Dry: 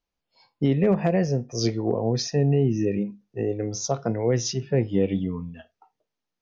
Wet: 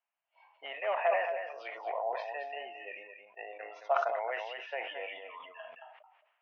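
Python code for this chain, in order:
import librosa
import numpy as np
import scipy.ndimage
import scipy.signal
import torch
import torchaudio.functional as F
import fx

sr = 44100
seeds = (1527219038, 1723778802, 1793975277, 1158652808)

y = scipy.signal.sosfilt(scipy.signal.cheby1(4, 1.0, [630.0, 2900.0], 'bandpass', fs=sr, output='sos'), x)
y = y + 10.0 ** (-7.5 / 20.0) * np.pad(y, (int(219 * sr / 1000.0), 0))[:len(y)]
y = fx.sustainer(y, sr, db_per_s=54.0)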